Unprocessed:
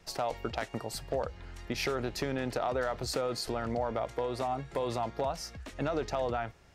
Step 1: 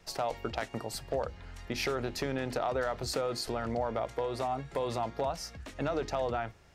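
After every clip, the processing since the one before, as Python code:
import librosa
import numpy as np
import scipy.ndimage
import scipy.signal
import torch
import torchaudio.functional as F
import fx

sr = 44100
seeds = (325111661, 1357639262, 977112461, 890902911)

y = fx.hum_notches(x, sr, base_hz=50, count=7)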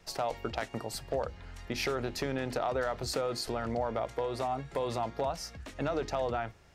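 y = x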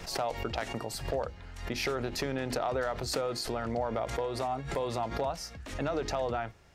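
y = fx.pre_swell(x, sr, db_per_s=81.0)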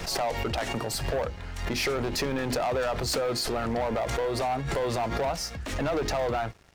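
y = fx.leveller(x, sr, passes=3)
y = y * 10.0 ** (-3.0 / 20.0)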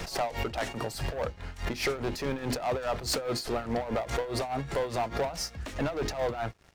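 y = x * (1.0 - 0.72 / 2.0 + 0.72 / 2.0 * np.cos(2.0 * np.pi * 4.8 * (np.arange(len(x)) / sr)))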